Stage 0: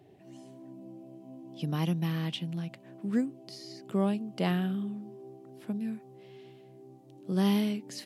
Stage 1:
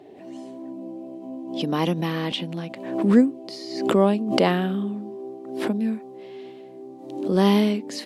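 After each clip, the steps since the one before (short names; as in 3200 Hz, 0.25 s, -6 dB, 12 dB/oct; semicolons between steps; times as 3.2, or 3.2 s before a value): graphic EQ 125/250/500/1000/2000/4000/8000 Hz -7/+11/+11/+9/+6/+7/+4 dB; backwards sustainer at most 67 dB/s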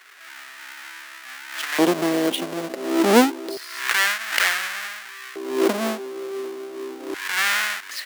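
half-waves squared off; LFO high-pass square 0.28 Hz 370–1700 Hz; gain -1.5 dB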